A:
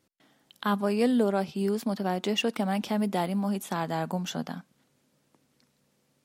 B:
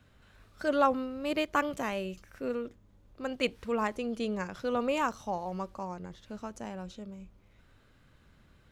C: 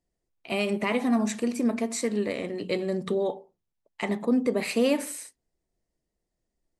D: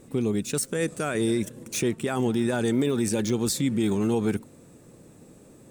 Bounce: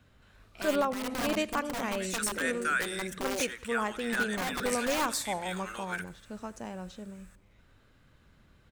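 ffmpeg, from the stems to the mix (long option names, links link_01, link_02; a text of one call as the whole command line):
ffmpeg -i stem1.wav -i stem2.wav -i stem3.wav -i stem4.wav -filter_complex "[1:a]volume=0dB,asplit=2[link_01][link_02];[link_02]volume=-22dB[link_03];[2:a]aeval=exprs='(mod(10*val(0)+1,2)-1)/10':channel_layout=same,adelay=100,volume=-9dB[link_04];[3:a]highpass=frequency=1500:width_type=q:width=3.8,adelay=1650,volume=-4dB,asplit=2[link_05][link_06];[link_06]volume=-21dB[link_07];[link_03][link_07]amix=inputs=2:normalize=0,aecho=0:1:85|170|255|340|425|510:1|0.41|0.168|0.0689|0.0283|0.0116[link_08];[link_01][link_04][link_05][link_08]amix=inputs=4:normalize=0,alimiter=limit=-18dB:level=0:latency=1:release=350" out.wav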